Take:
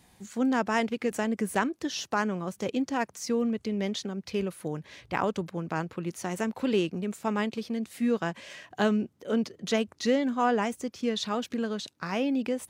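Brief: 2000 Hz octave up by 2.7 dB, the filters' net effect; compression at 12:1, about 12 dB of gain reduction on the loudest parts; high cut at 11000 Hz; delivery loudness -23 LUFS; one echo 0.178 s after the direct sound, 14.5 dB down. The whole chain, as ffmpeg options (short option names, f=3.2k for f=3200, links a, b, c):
-af "lowpass=11k,equalizer=f=2k:t=o:g=3.5,acompressor=threshold=-32dB:ratio=12,aecho=1:1:178:0.188,volume=14.5dB"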